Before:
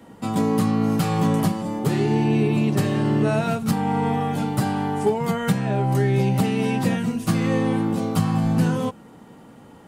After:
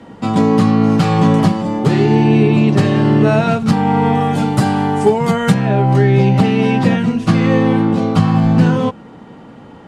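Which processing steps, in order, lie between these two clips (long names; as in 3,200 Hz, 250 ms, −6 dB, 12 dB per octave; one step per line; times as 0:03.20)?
low-pass filter 5,300 Hz 12 dB per octave, from 0:04.15 8,800 Hz, from 0:05.54 4,400 Hz
level +8.5 dB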